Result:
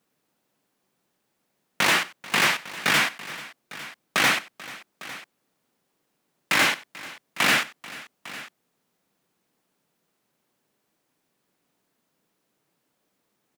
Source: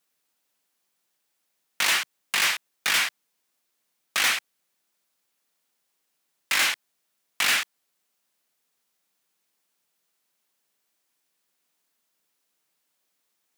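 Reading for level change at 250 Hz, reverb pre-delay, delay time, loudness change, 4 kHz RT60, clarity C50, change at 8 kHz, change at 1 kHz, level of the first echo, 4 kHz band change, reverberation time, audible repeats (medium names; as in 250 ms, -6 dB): +14.5 dB, no reverb, 94 ms, +1.5 dB, no reverb, no reverb, -2.0 dB, +6.0 dB, -19.5 dB, 0.0 dB, no reverb, 3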